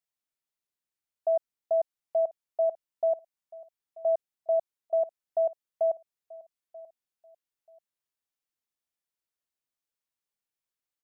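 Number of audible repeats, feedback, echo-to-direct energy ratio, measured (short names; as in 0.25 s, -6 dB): 2, 25%, -19.5 dB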